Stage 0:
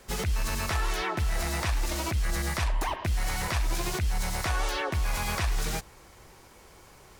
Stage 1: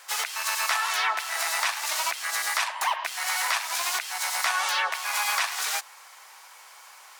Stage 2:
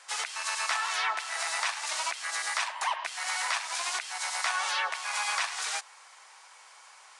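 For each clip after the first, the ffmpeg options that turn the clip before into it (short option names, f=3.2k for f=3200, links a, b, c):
-af "highpass=f=830:w=0.5412,highpass=f=830:w=1.3066,volume=7.5dB"
-af "aresample=22050,aresample=44100,volume=-4dB"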